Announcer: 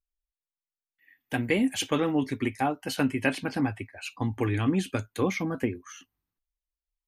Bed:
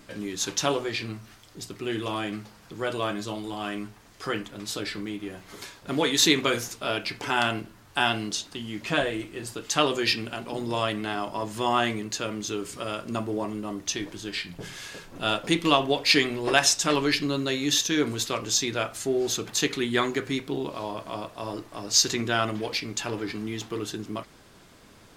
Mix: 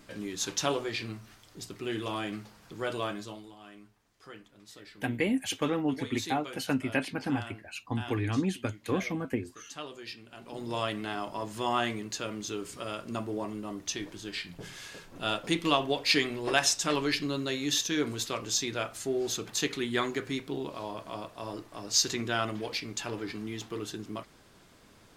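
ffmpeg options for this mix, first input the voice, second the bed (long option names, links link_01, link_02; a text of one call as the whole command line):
ffmpeg -i stem1.wav -i stem2.wav -filter_complex "[0:a]adelay=3700,volume=-3.5dB[link_01];[1:a]volume=9.5dB,afade=type=out:start_time=2.98:duration=0.57:silence=0.188365,afade=type=in:start_time=10.27:duration=0.49:silence=0.211349[link_02];[link_01][link_02]amix=inputs=2:normalize=0" out.wav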